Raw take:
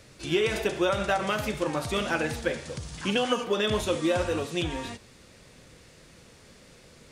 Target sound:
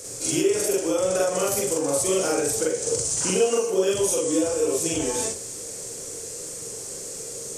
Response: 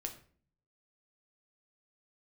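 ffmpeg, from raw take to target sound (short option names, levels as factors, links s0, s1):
-filter_complex "[0:a]equalizer=f=125:t=o:w=1:g=7,equalizer=f=500:t=o:w=1:g=8,equalizer=f=1000:t=o:w=1:g=-4,equalizer=f=2000:t=o:w=1:g=-6,equalizer=f=4000:t=o:w=1:g=-11,equalizer=f=8000:t=o:w=1:g=8,asetrate=41454,aresample=44100,bass=f=250:g=-14,treble=f=4000:g=13,acompressor=threshold=0.0224:ratio=5,asplit=2[s0][s1];[1:a]atrim=start_sample=2205,atrim=end_sample=3528,adelay=43[s2];[s1][s2]afir=irnorm=-1:irlink=0,volume=1.68[s3];[s0][s3]amix=inputs=2:normalize=0,volume=2.24"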